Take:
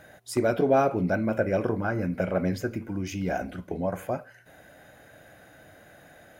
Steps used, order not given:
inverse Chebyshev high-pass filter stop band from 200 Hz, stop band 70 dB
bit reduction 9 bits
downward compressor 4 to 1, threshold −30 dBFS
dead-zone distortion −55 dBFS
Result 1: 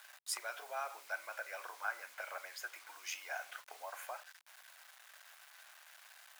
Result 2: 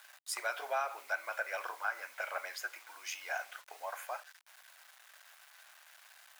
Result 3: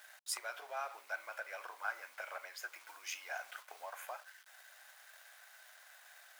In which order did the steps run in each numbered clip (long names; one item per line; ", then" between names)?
dead-zone distortion, then downward compressor, then bit reduction, then inverse Chebyshev high-pass filter
dead-zone distortion, then bit reduction, then inverse Chebyshev high-pass filter, then downward compressor
bit reduction, then downward compressor, then dead-zone distortion, then inverse Chebyshev high-pass filter